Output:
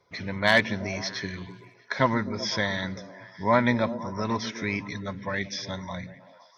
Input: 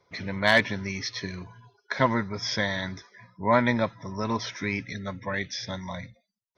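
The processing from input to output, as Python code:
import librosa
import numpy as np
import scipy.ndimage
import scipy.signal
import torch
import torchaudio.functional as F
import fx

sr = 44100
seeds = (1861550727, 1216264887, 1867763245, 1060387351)

y = fx.echo_stepped(x, sr, ms=127, hz=200.0, octaves=0.7, feedback_pct=70, wet_db=-7)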